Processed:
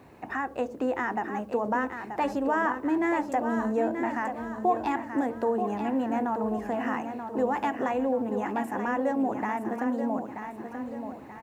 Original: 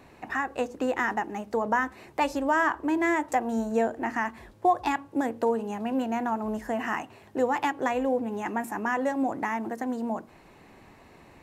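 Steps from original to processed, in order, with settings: high-pass 59 Hz 12 dB/octave; treble shelf 2 kHz -10.5 dB; de-hum 74.52 Hz, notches 9; in parallel at +0.5 dB: peak limiter -24.5 dBFS, peak gain reduction 10 dB; on the sum: bit crusher 11-bit; on a send: feedback delay 932 ms, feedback 44%, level -8 dB; on the sum: trim -4 dB

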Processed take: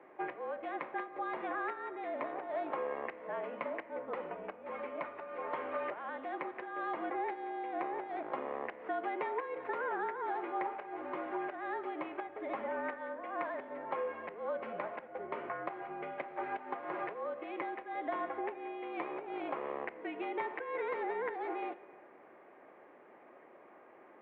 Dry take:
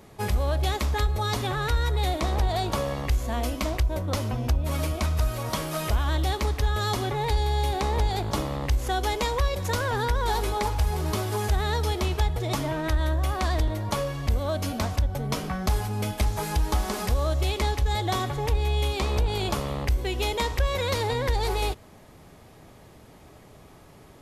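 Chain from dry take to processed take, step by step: compression, threshold -27 dBFS, peak gain reduction 9 dB; on a send at -14 dB: reverberation RT60 1.9 s, pre-delay 3 ms; on the sum: mistuned SSB -53 Hz 390–2300 Hz; trim -3 dB

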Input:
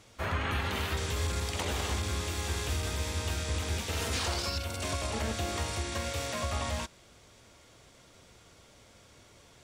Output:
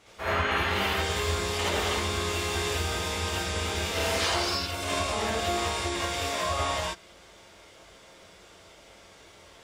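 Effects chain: tone controls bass -10 dB, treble -5 dB; gated-style reverb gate 100 ms rising, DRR -7 dB

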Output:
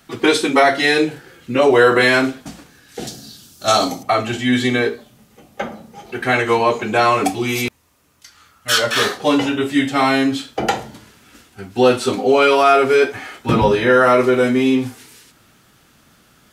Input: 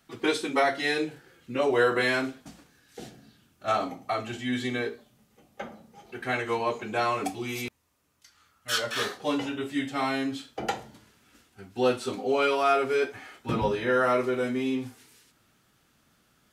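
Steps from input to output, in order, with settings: 3.07–4.03 s: resonant high shelf 3.3 kHz +12 dB, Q 1.5; in parallel at 0 dB: peak limiter -19 dBFS, peak gain reduction 7.5 dB; on the sum: trim +7 dB

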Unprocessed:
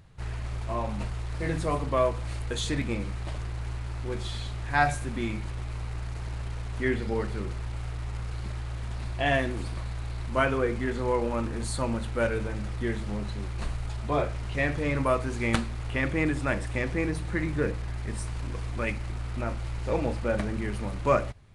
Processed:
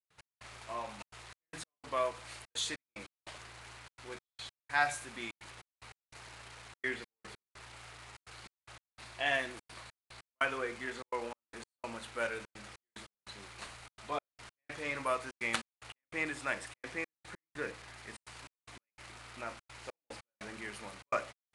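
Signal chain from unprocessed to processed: high-pass 1.4 kHz 6 dB/octave; trance gate ".x..xxxxxx.xx." 147 bpm -60 dB; trim -1.5 dB

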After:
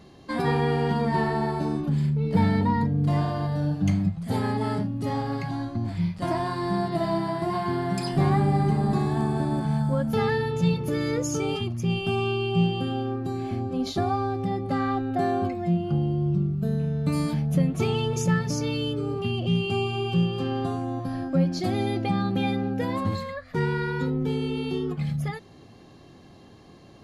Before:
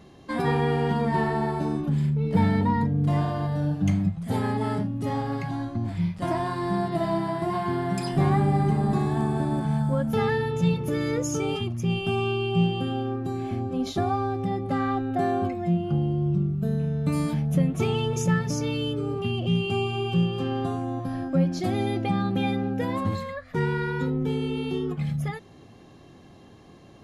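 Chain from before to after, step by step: peaking EQ 4.5 kHz +7 dB 0.22 oct

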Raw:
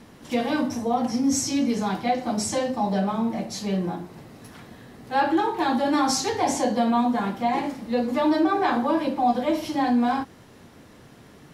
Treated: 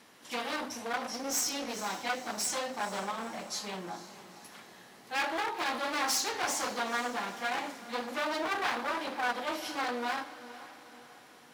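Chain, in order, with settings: one-sided wavefolder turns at -24 dBFS; high-pass 1.2 kHz 6 dB/octave; echo that smears into a reverb 469 ms, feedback 49%, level -14.5 dB; trim -2 dB

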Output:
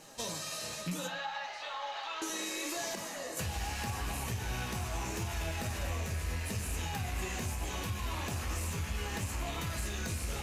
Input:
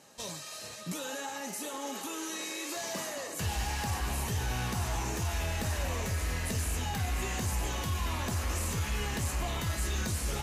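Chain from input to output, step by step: rattle on loud lows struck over -40 dBFS, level -32 dBFS; 1.07–2.22 s: Chebyshev band-pass 680–4200 Hz, order 3; in parallel at -4 dB: saturation -29.5 dBFS, distortion -15 dB; on the sum: flange 0.73 Hz, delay 6 ms, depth 8 ms, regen +58%; compression, threshold -38 dBFS, peak gain reduction 10 dB; added noise pink -77 dBFS; on a send at -8 dB: reverberation RT60 0.60 s, pre-delay 6 ms; 2.95–3.37 s: on the sum: detune thickener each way 22 cents; trim +3.5 dB

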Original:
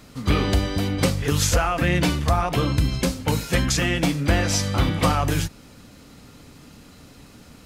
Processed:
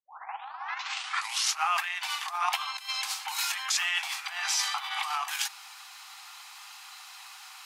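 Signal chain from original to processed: tape start-up on the opening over 1.69 s; compressor with a negative ratio -26 dBFS, ratio -1; rippled Chebyshev high-pass 760 Hz, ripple 3 dB; trim +3.5 dB

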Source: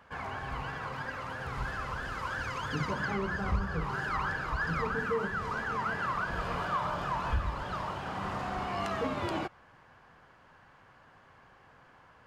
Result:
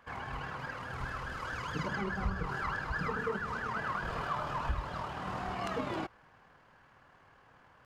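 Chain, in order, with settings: granular stretch 0.64×, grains 52 ms; trim -1.5 dB

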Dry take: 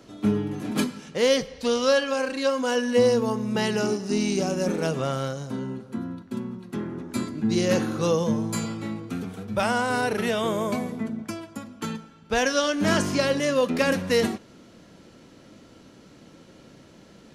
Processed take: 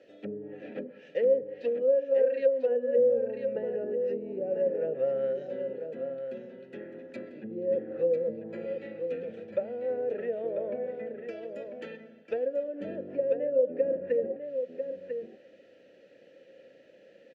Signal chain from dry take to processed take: low-pass that closes with the level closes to 400 Hz, closed at -19.5 dBFS; vowel filter e; delay 995 ms -7.5 dB; trim +5 dB

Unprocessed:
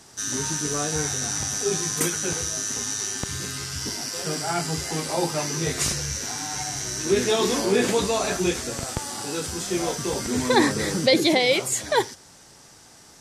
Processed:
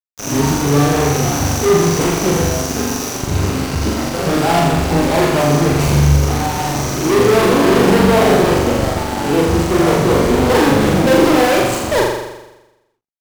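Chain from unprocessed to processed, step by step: median filter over 25 samples; fuzz box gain 34 dB, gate -41 dBFS; on a send: flutter echo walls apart 7.2 m, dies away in 1 s

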